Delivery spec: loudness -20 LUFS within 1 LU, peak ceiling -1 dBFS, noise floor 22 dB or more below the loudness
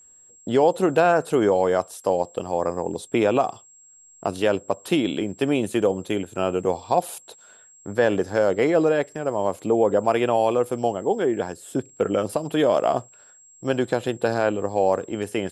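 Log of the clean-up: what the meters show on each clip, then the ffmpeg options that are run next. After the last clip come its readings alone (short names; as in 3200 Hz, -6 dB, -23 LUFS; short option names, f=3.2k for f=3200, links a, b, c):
steady tone 7600 Hz; tone level -49 dBFS; loudness -23.0 LUFS; peak -6.5 dBFS; loudness target -20.0 LUFS
-> -af "bandreject=f=7.6k:w=30"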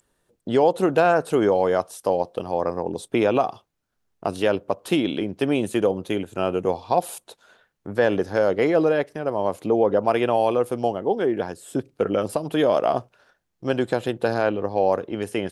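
steady tone none; loudness -23.0 LUFS; peak -6.5 dBFS; loudness target -20.0 LUFS
-> -af "volume=3dB"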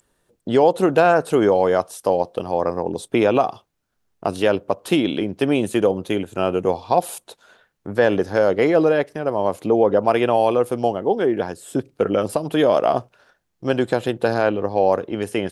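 loudness -20.0 LUFS; peak -3.5 dBFS; noise floor -72 dBFS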